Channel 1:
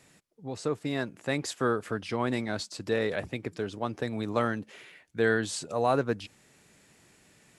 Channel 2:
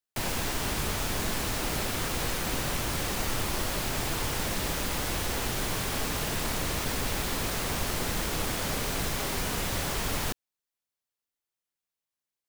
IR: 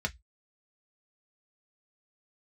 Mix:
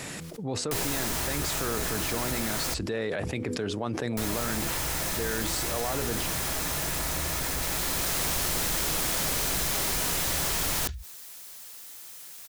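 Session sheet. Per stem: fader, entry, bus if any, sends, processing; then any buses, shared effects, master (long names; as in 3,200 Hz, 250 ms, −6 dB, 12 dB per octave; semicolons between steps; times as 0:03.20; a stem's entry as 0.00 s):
−2.5 dB, 0.00 s, no send, hum removal 82.41 Hz, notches 6; brickwall limiter −24.5 dBFS, peak gain reduction 11.5 dB; level that may fall only so fast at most 78 dB per second
−3.0 dB, 0.55 s, muted 0:02.74–0:04.17, send −17.5 dB, high-shelf EQ 2,800 Hz +10.5 dB; automatic ducking −7 dB, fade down 1.35 s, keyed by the first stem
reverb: on, RT60 0.10 s, pre-delay 3 ms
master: envelope flattener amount 70%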